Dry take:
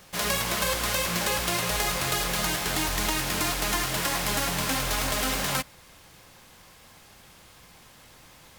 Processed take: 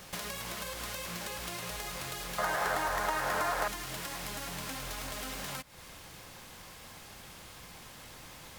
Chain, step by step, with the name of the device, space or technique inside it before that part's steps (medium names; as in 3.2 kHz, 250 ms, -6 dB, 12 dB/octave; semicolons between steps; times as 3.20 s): serial compression, peaks first (compression, threshold -34 dBFS, peak gain reduction 11 dB; compression 2:1, threshold -43 dBFS, peak gain reduction 6.5 dB); 2.38–3.68 s: high-order bell 910 Hz +14 dB 2.3 oct; trim +2.5 dB